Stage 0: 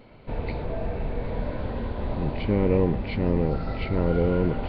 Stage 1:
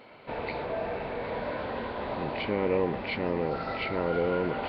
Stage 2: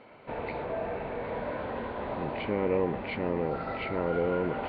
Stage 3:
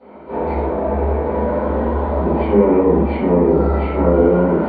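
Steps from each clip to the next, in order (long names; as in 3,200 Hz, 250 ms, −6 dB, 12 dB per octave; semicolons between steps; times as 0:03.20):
high-pass filter 1,300 Hz 6 dB per octave; high-shelf EQ 2,600 Hz −8.5 dB; in parallel at −1.5 dB: brickwall limiter −33.5 dBFS, peak gain reduction 11 dB; on the sum: level +4.5 dB
high-frequency loss of the air 290 metres
hollow resonant body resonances 220/950 Hz, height 7 dB; convolution reverb RT60 0.60 s, pre-delay 3 ms, DRR −20 dB; level −11 dB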